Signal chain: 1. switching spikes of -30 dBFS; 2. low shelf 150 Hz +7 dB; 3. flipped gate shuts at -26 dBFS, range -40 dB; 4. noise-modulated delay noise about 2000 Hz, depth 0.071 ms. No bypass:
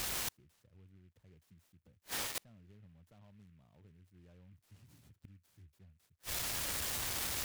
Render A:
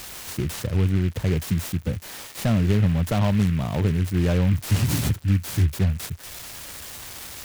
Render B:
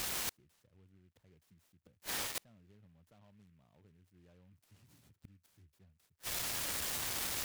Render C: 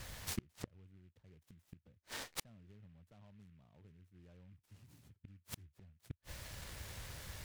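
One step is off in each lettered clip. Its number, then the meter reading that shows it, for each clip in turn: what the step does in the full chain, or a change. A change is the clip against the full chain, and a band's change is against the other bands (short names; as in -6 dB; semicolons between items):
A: 3, momentary loudness spread change +8 LU; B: 2, 125 Hz band -3.5 dB; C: 1, distortion -13 dB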